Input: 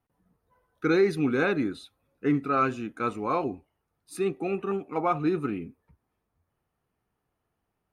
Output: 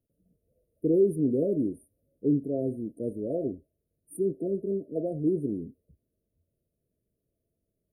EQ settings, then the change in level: brick-wall FIR band-stop 680–8800 Hz; 0.0 dB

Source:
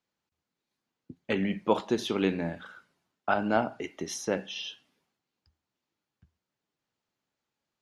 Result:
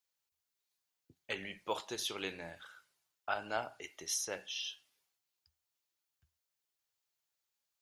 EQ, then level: pre-emphasis filter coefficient 0.8; peaking EQ 220 Hz -14.5 dB 1.2 oct; +4.0 dB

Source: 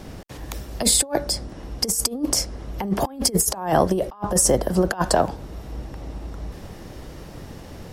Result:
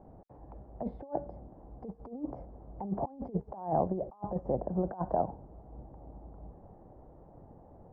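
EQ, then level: dynamic bell 150 Hz, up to +7 dB, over -38 dBFS, Q 0.75; four-pole ladder low-pass 920 Hz, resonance 50%; -7.5 dB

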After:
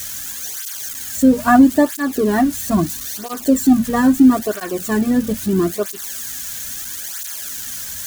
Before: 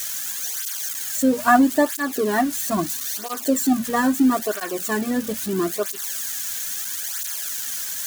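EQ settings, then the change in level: bass shelf 72 Hz +9.5 dB; bass shelf 280 Hz +12 dB; 0.0 dB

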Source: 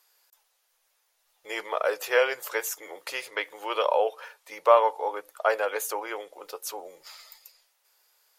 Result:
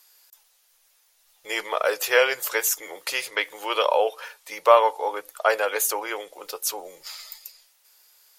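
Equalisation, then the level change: bass shelf 170 Hz +10 dB; treble shelf 2 kHz +9 dB; +1.0 dB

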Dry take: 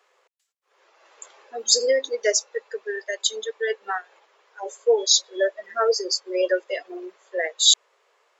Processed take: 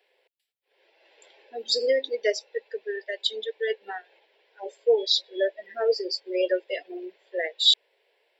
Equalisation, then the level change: static phaser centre 2.9 kHz, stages 4; 0.0 dB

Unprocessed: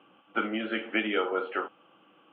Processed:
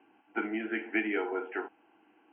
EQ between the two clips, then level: low-pass 2.6 kHz 24 dB/octave; static phaser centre 810 Hz, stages 8; 0.0 dB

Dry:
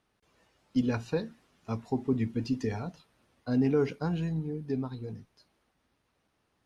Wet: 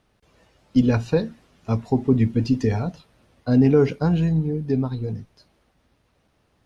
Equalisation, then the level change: bass shelf 220 Hz +10.5 dB; peaking EQ 580 Hz +4.5 dB 0.9 oct; peaking EQ 3.5 kHz +3 dB 2.8 oct; +4.5 dB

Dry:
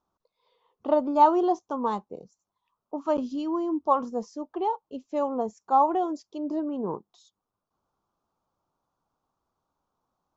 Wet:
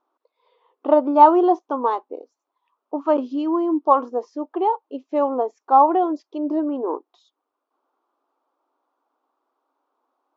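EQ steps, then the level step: brick-wall FIR high-pass 250 Hz; low-pass 2.8 kHz 12 dB/octave; +7.0 dB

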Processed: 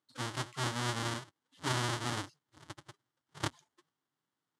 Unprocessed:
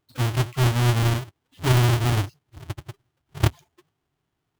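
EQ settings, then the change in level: cabinet simulation 260–9800 Hz, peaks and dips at 390 Hz -9 dB, 690 Hz -8 dB, 2.5 kHz -8 dB; -6.0 dB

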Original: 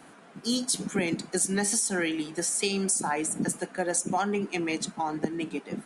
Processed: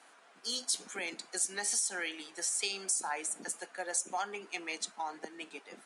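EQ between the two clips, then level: high-pass 610 Hz 12 dB/octave; distance through air 57 m; treble shelf 4.5 kHz +10.5 dB; -6.5 dB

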